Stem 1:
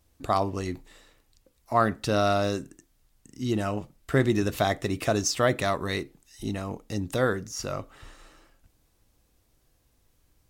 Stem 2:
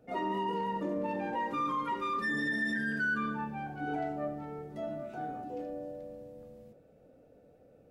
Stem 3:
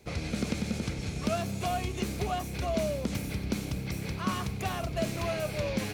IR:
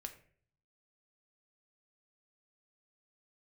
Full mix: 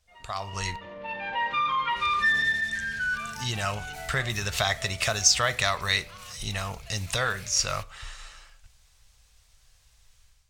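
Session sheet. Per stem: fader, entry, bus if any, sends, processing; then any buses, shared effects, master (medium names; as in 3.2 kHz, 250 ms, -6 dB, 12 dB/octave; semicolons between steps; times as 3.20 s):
+1.0 dB, 0.00 s, muted 0.76–2.68 s, bus A, send -8 dB, none
-8.0 dB, 0.00 s, bus A, send -9 dB, level rider gain up to 10.5 dB; resonant low-pass 3.3 kHz, resonance Q 1.8; auto duck -11 dB, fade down 0.30 s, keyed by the first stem
-9.5 dB, 1.90 s, no bus, no send, peak limiter -30 dBFS, peak gain reduction 12 dB
bus A: 0.0 dB, low-pass 10 kHz 24 dB/octave; compression 4:1, threshold -25 dBFS, peak gain reduction 8.5 dB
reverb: on, RT60 0.50 s, pre-delay 5 ms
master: amplifier tone stack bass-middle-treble 10-0-10; level rider gain up to 11 dB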